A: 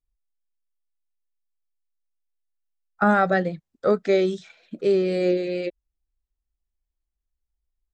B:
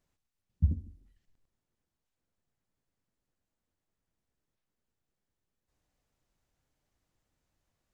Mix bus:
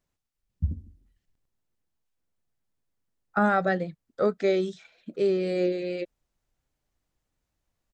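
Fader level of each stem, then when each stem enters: −4.0, −1.0 decibels; 0.35, 0.00 seconds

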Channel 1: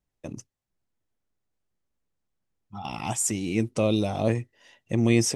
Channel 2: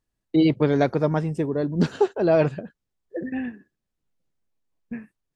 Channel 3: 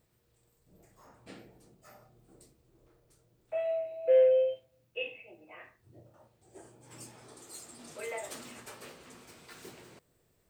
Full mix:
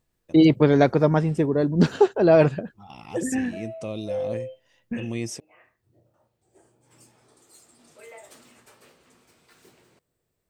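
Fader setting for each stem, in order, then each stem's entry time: −9.5, +3.0, −6.5 decibels; 0.05, 0.00, 0.00 seconds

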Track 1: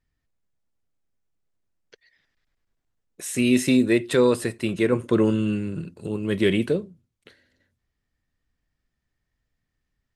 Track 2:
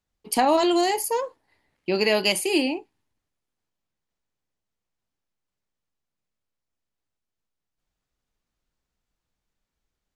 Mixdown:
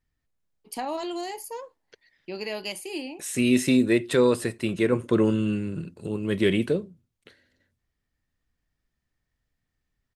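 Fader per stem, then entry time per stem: −1.5, −11.5 decibels; 0.00, 0.40 seconds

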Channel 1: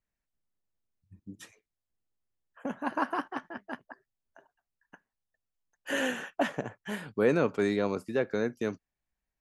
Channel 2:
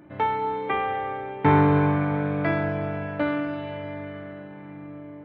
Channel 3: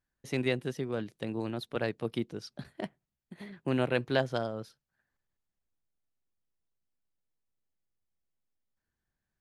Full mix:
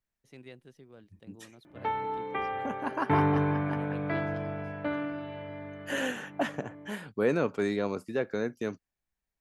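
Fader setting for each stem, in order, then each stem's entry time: −1.5, −7.0, −19.0 decibels; 0.00, 1.65, 0.00 seconds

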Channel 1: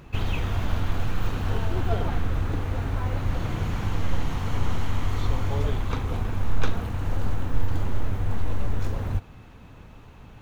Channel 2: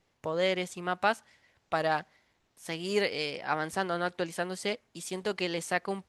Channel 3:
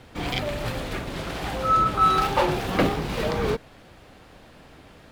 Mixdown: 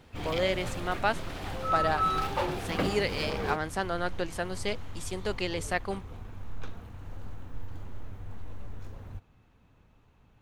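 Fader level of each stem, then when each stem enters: −15.5, −0.5, −8.5 decibels; 0.00, 0.00, 0.00 seconds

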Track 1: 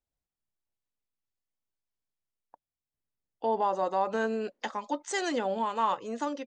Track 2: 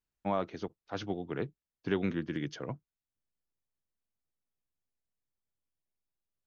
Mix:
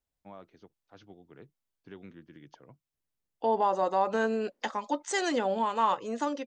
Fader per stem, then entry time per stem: +1.5, −16.5 decibels; 0.00, 0.00 seconds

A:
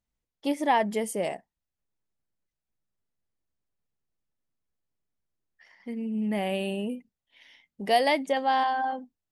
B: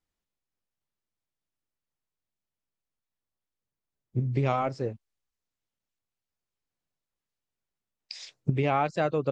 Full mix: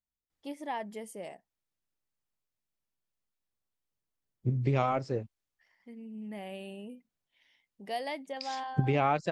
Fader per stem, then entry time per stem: −13.0, −1.5 decibels; 0.00, 0.30 seconds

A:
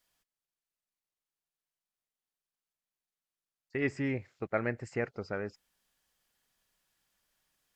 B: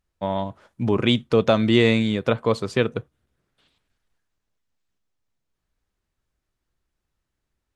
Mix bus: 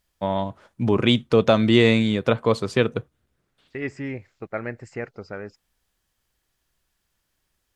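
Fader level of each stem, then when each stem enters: +1.5, +1.0 decibels; 0.00, 0.00 seconds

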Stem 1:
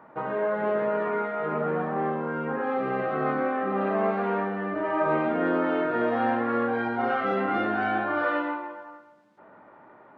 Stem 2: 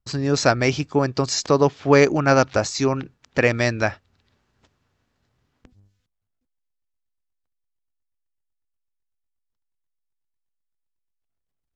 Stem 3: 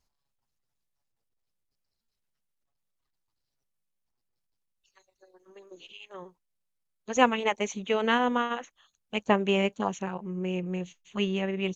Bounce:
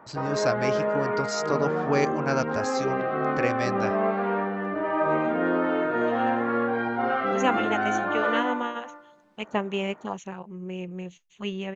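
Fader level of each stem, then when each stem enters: +0.5, −10.0, −3.5 decibels; 0.00, 0.00, 0.25 seconds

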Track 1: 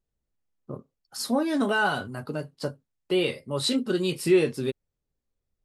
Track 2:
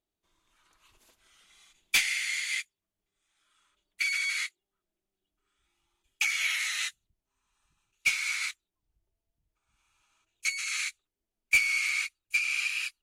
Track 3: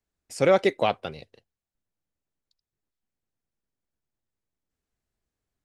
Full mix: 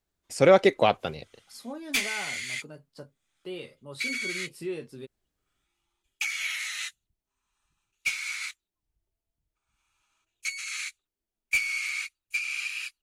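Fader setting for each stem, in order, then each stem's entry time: −14.0, −2.5, +2.0 decibels; 0.35, 0.00, 0.00 seconds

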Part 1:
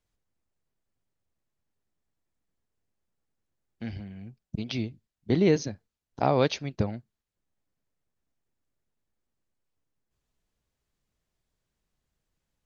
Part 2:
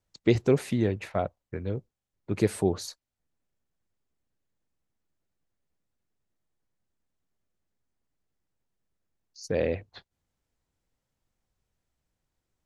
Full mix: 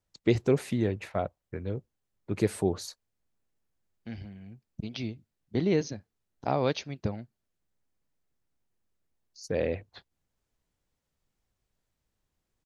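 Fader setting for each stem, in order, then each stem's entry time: −4.0, −2.0 decibels; 0.25, 0.00 seconds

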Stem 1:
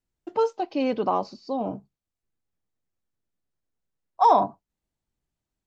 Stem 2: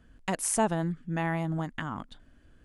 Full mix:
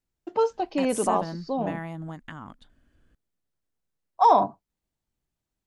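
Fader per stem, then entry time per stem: 0.0, −5.5 decibels; 0.00, 0.50 seconds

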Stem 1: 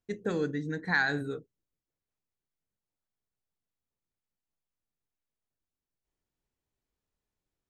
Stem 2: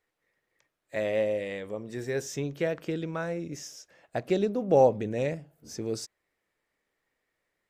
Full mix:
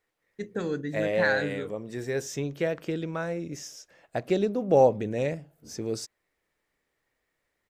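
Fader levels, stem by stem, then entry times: 0.0, +1.0 decibels; 0.30, 0.00 seconds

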